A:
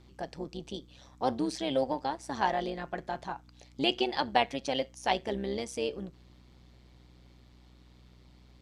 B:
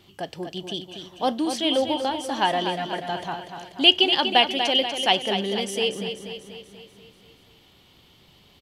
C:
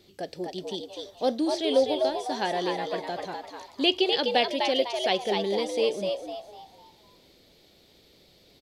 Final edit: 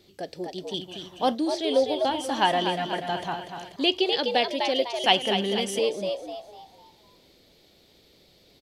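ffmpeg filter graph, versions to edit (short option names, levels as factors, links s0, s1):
-filter_complex "[1:a]asplit=3[s0][s1][s2];[2:a]asplit=4[s3][s4][s5][s6];[s3]atrim=end=0.742[s7];[s0]atrim=start=0.738:end=1.352[s8];[s4]atrim=start=1.348:end=2.052[s9];[s1]atrim=start=2.048:end=3.762[s10];[s5]atrim=start=3.758:end=5.042[s11];[s2]atrim=start=5.038:end=5.792[s12];[s6]atrim=start=5.788[s13];[s7][s8]acrossfade=d=0.004:c1=hsin:c2=hsin[s14];[s14][s9]acrossfade=d=0.004:c1=hsin:c2=hsin[s15];[s15][s10]acrossfade=d=0.004:c1=hsin:c2=hsin[s16];[s16][s11]acrossfade=d=0.004:c1=hsin:c2=hsin[s17];[s17][s12]acrossfade=d=0.004:c1=hsin:c2=hsin[s18];[s18][s13]acrossfade=d=0.004:c1=hsin:c2=hsin"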